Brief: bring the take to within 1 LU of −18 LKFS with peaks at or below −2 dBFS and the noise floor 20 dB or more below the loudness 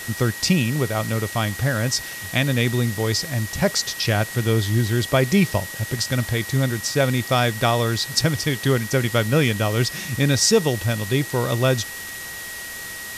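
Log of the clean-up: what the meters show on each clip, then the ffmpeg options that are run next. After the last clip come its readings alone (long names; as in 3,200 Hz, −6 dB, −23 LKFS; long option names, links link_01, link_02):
interfering tone 1,900 Hz; level of the tone −34 dBFS; background noise floor −34 dBFS; target noise floor −42 dBFS; integrated loudness −21.5 LKFS; sample peak −5.5 dBFS; target loudness −18.0 LKFS
→ -af "bandreject=frequency=1900:width=30"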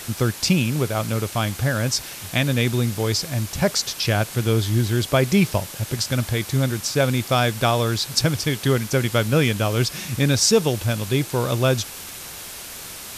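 interfering tone none found; background noise floor −36 dBFS; target noise floor −42 dBFS
→ -af "afftdn=noise_reduction=6:noise_floor=-36"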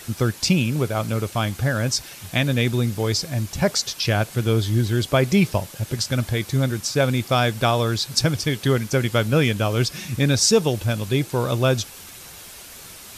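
background noise floor −41 dBFS; target noise floor −42 dBFS
→ -af "afftdn=noise_reduction=6:noise_floor=-41"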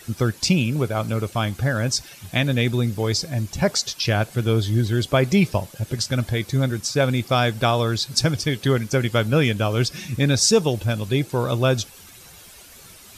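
background noise floor −45 dBFS; integrated loudness −21.5 LKFS; sample peak −6.0 dBFS; target loudness −18.0 LKFS
→ -af "volume=3.5dB"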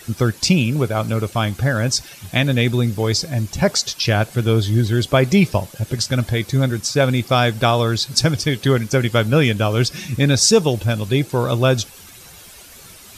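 integrated loudness −18.0 LKFS; sample peak −2.5 dBFS; background noise floor −42 dBFS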